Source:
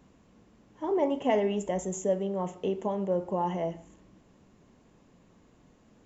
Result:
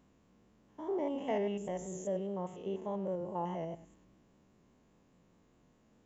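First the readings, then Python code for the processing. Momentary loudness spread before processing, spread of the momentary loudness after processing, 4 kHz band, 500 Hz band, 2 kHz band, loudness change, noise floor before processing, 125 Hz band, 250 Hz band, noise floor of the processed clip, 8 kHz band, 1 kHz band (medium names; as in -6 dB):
7 LU, 7 LU, -8.5 dB, -8.0 dB, -8.5 dB, -7.5 dB, -62 dBFS, -6.5 dB, -7.0 dB, -68 dBFS, no reading, -8.0 dB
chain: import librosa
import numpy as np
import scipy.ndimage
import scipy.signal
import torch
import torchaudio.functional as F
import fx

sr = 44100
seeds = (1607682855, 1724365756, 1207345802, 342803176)

y = fx.spec_steps(x, sr, hold_ms=100)
y = fx.vibrato(y, sr, rate_hz=4.9, depth_cents=30.0)
y = y * 10.0 ** (-6.0 / 20.0)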